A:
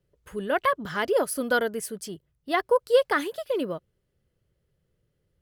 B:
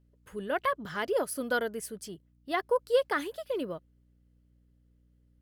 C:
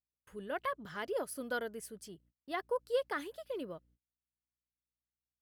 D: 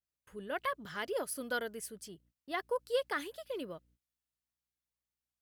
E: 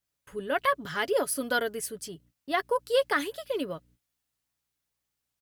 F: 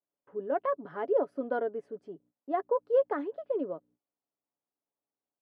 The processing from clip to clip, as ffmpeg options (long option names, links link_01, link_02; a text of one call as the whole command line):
ffmpeg -i in.wav -af "aeval=exprs='val(0)+0.00126*(sin(2*PI*60*n/s)+sin(2*PI*2*60*n/s)/2+sin(2*PI*3*60*n/s)/3+sin(2*PI*4*60*n/s)/4+sin(2*PI*5*60*n/s)/5)':channel_layout=same,volume=-5.5dB" out.wav
ffmpeg -i in.wav -af "agate=range=-30dB:threshold=-58dB:ratio=16:detection=peak,volume=-7.5dB" out.wav
ffmpeg -i in.wav -af "adynamicequalizer=threshold=0.00316:dfrequency=1600:dqfactor=0.7:tfrequency=1600:tqfactor=0.7:attack=5:release=100:ratio=0.375:range=2.5:mode=boostabove:tftype=highshelf" out.wav
ffmpeg -i in.wav -af "aecho=1:1:7.1:0.35,volume=8.5dB" out.wav
ffmpeg -i in.wav -af "asuperpass=centerf=470:order=4:qfactor=0.73" out.wav